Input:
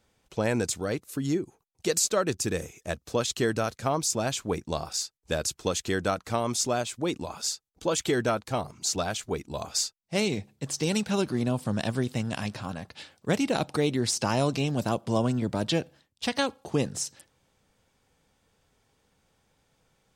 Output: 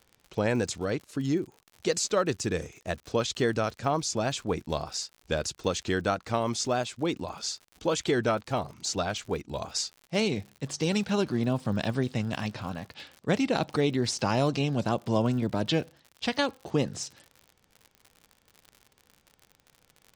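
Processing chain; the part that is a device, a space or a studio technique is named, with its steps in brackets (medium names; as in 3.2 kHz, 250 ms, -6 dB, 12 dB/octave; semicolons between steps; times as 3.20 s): lo-fi chain (low-pass 5.8 kHz 12 dB/octave; wow and flutter; crackle 74 per s -39 dBFS)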